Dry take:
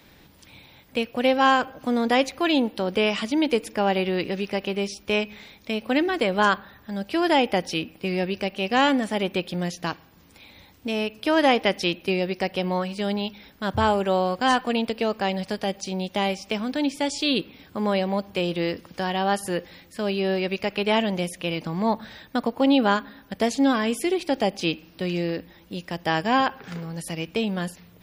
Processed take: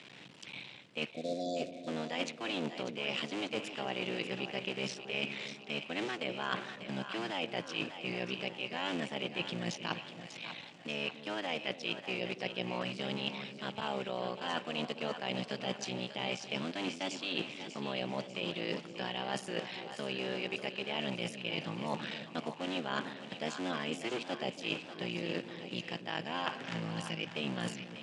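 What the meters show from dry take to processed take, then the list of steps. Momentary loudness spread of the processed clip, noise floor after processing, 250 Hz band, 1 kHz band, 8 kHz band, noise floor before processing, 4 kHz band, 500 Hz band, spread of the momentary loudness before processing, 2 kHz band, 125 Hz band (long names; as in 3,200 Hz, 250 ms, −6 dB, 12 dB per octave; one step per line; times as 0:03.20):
4 LU, −50 dBFS, −15.0 dB, −16.0 dB, −10.5 dB, −53 dBFS, −8.0 dB, −14.0 dB, 10 LU, −10.5 dB, −11.0 dB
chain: sub-harmonics by changed cycles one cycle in 3, muted
time-frequency box erased 0:01.11–0:01.88, 740–3,400 Hz
parametric band 2,800 Hz +9 dB 0.81 octaves
reversed playback
downward compressor 10 to 1, threshold −33 dBFS, peak gain reduction 20 dB
reversed playback
elliptic band-pass filter 130–8,000 Hz, stop band 40 dB
on a send: echo with a time of its own for lows and highs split 600 Hz, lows 280 ms, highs 594 ms, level −9.5 dB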